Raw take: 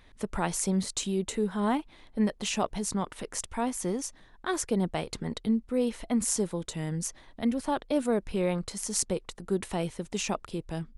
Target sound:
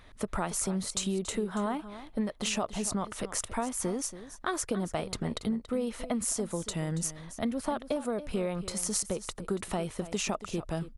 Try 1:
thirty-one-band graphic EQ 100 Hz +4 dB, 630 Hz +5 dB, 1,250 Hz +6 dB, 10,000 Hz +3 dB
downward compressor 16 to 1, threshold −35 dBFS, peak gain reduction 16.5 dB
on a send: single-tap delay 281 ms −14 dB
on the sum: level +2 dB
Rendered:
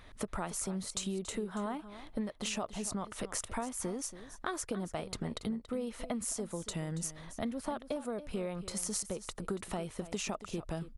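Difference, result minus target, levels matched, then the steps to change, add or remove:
downward compressor: peak gain reduction +5.5 dB
change: downward compressor 16 to 1, threshold −29 dBFS, peak gain reduction 11 dB

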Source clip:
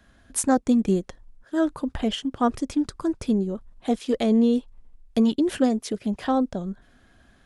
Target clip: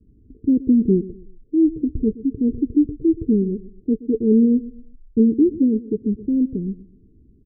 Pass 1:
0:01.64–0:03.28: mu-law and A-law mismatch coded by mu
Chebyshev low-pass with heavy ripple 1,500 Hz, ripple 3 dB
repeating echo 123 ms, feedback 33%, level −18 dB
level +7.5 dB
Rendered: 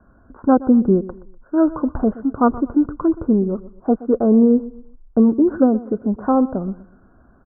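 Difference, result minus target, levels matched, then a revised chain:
500 Hz band +3.0 dB
0:01.64–0:03.28: mu-law and A-law mismatch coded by mu
Chebyshev low-pass with heavy ripple 450 Hz, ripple 3 dB
repeating echo 123 ms, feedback 33%, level −18 dB
level +7.5 dB

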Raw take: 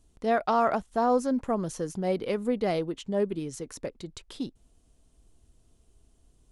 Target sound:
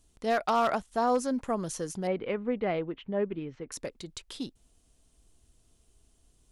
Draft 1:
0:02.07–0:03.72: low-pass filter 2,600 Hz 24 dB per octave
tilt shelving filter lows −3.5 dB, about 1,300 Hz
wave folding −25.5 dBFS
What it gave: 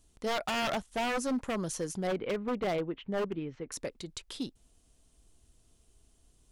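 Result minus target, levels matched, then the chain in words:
wave folding: distortion +21 dB
0:02.07–0:03.72: low-pass filter 2,600 Hz 24 dB per octave
tilt shelving filter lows −3.5 dB, about 1,300 Hz
wave folding −18 dBFS

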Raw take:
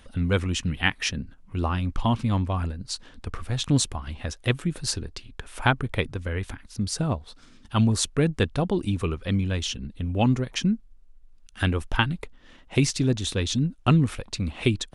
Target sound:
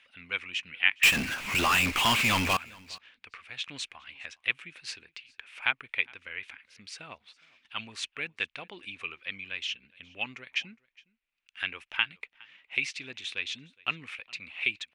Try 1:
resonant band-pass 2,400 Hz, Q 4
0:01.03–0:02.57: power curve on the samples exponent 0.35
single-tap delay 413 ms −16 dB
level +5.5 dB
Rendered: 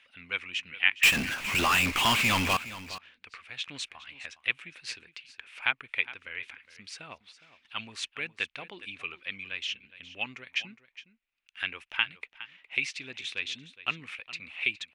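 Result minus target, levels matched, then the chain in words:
echo-to-direct +9.5 dB
resonant band-pass 2,400 Hz, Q 4
0:01.03–0:02.57: power curve on the samples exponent 0.35
single-tap delay 413 ms −25.5 dB
level +5.5 dB

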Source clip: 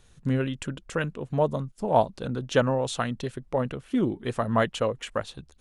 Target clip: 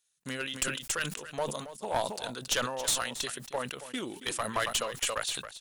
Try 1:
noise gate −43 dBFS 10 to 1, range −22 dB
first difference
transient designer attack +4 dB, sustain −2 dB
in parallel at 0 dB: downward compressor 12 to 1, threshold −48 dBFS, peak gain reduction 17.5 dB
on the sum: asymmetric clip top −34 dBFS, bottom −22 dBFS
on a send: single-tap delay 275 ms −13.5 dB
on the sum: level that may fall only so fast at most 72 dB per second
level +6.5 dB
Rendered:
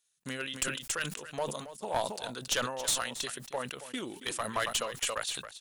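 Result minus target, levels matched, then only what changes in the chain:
downward compressor: peak gain reduction +7 dB
change: downward compressor 12 to 1, threshold −40.5 dBFS, peak gain reduction 10.5 dB

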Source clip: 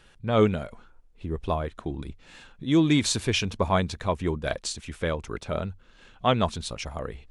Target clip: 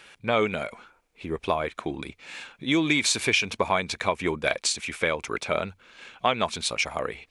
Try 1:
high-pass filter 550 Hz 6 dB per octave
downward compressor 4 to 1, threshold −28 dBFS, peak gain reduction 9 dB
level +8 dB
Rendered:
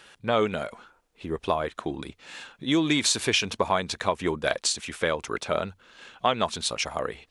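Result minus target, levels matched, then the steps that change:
2,000 Hz band −3.0 dB
add after high-pass filter: parametric band 2,300 Hz +10 dB 0.23 octaves

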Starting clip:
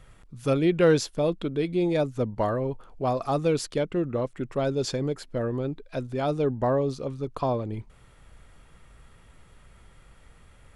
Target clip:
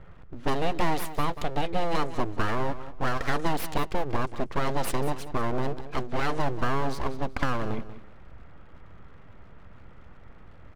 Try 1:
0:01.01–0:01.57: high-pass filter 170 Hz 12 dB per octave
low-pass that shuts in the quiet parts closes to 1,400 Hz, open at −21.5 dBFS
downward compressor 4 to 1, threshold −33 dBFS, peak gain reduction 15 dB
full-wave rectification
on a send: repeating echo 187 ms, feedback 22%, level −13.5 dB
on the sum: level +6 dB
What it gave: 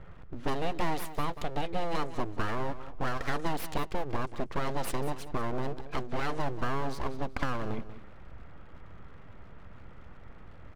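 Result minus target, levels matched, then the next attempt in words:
downward compressor: peak gain reduction +5 dB
0:01.01–0:01.57: high-pass filter 170 Hz 12 dB per octave
low-pass that shuts in the quiet parts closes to 1,400 Hz, open at −21.5 dBFS
downward compressor 4 to 1, threshold −26.5 dBFS, peak gain reduction 10 dB
full-wave rectification
on a send: repeating echo 187 ms, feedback 22%, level −13.5 dB
on the sum: level +6 dB

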